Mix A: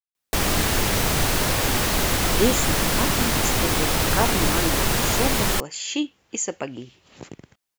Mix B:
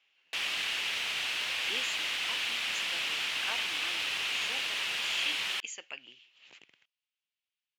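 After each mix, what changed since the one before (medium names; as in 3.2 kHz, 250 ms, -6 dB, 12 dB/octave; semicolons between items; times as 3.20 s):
speech: entry -0.70 s; master: add band-pass filter 2.8 kHz, Q 3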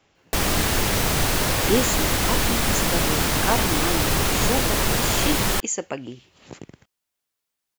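master: remove band-pass filter 2.8 kHz, Q 3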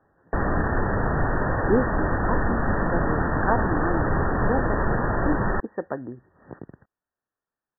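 master: add brick-wall FIR low-pass 1.9 kHz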